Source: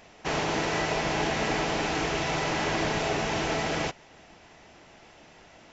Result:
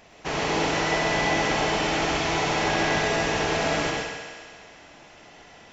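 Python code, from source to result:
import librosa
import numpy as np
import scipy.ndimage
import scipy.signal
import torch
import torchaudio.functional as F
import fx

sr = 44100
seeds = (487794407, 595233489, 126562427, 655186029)

p1 = x + fx.echo_thinned(x, sr, ms=66, feedback_pct=81, hz=170.0, wet_db=-8.5, dry=0)
y = fx.rev_plate(p1, sr, seeds[0], rt60_s=0.68, hf_ratio=0.95, predelay_ms=90, drr_db=1.0)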